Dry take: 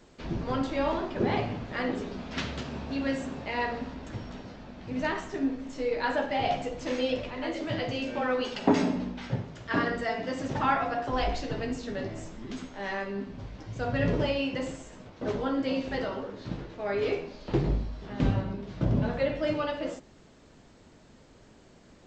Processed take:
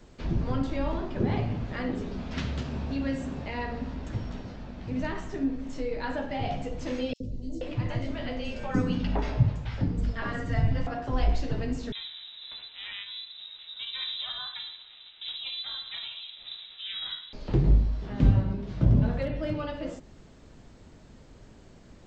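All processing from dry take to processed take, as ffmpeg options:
-filter_complex "[0:a]asettb=1/sr,asplit=3[a][b][c];[a]atrim=end=7.134[d];[b]atrim=start=7.13:end=10.87,asetpts=PTS-STARTPTS,afade=t=in:d=0.004:c=qsin,afade=t=out:st=3.736:d=0.004:c=qsin,asubboost=boost=5:cutoff=120,acrossover=split=370|5700[e][f][g];[e]adelay=70[h];[f]adelay=480[i];[h][i][g]amix=inputs=3:normalize=0,atrim=end_sample=164934[j];[c]atrim=start=10.866[k];[d][j]acrossfade=d=0.004:c1=hsin:c2=qsin[l];[l][k]acrossfade=d=0.004:c1=qsin:c2=hsin,asettb=1/sr,asplit=3[m][n][o];[m]atrim=end=11.924[p];[n]atrim=start=11.92:end=17.33,asetpts=PTS-STARTPTS,afade=t=in:d=0.004:c=qsin,afade=t=out:st=5.406:d=0.004:c=qsin,aeval=exprs='val(0)*sin(2*PI*240*n/s)':c=same,acrusher=bits=8:mode=log:mix=0:aa=0.000001,lowpass=f=3.4k:t=q:w=0.5098,lowpass=f=3.4k:t=q:w=0.6013,lowpass=f=3.4k:t=q:w=0.9,lowpass=f=3.4k:t=q:w=2.563,afreqshift=-4000[q];[o]atrim=start=17.326[r];[p][q]acrossfade=d=0.004:c1=hsin:c2=qsin[s];[s][r]acrossfade=d=0.004:c1=qsin:c2=hsin,asettb=1/sr,asplit=3[t][u][v];[t]atrim=end=19.224[w];[u]atrim=start=19.22:end=19.63,asetpts=PTS-STARTPTS,afade=t=in:d=0.004:c=qsin,afade=t=out:st=0.406:d=0.004:c=qsin,lowpass=5.8k,volume=21.5dB,asoftclip=hard,volume=-21.5dB[x];[v]atrim=start=19.626[y];[w][x]acrossfade=d=0.004:c1=hsin:c2=qsin[z];[z][y]acrossfade=d=0.004:c1=qsin:c2=hsin,lowshelf=f=130:g=10.5,acrossover=split=280[aa][ab];[ab]acompressor=threshold=-41dB:ratio=1.5[ac];[aa][ac]amix=inputs=2:normalize=0"

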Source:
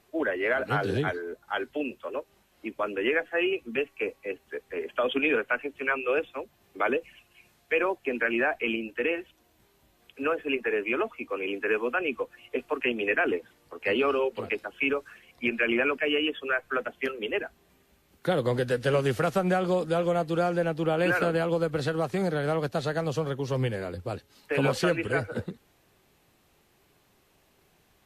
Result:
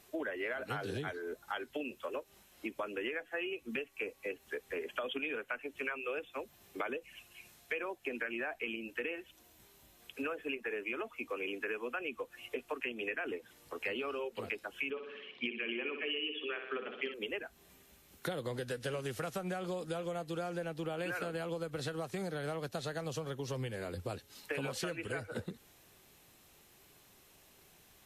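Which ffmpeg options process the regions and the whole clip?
-filter_complex "[0:a]asettb=1/sr,asplit=3[a][b][c];[a]atrim=end=14.904[d];[b]atrim=start=14.9:end=17.14,asetpts=PTS-STARTPTS,afade=t=in:d=0.004:c=qsin,afade=t=out:st=2.236:d=0.004:c=qsin,highpass=210,equalizer=f=220:t=q:w=4:g=6,equalizer=f=400:t=q:w=4:g=5,equalizer=f=640:t=q:w=4:g=-10,equalizer=f=1.5k:t=q:w=4:g=-9,equalizer=f=3.1k:t=q:w=4:g=9,lowpass=f=3.8k:w=0.5412,lowpass=f=3.8k:w=1.3066,aecho=1:1:62|124|186|248|310|372:0.355|0.185|0.0959|0.0499|0.0259|0.0135,atrim=end_sample=98784[e];[c]atrim=start=17.136[f];[d][e]acrossfade=d=0.004:c1=hsin:c2=qsin[g];[g][f]acrossfade=d=0.004:c1=qsin:c2=hsin,highshelf=f=3.3k:g=9,bandreject=f=4.6k:w=24,acompressor=threshold=-35dB:ratio=6,volume=-1dB"

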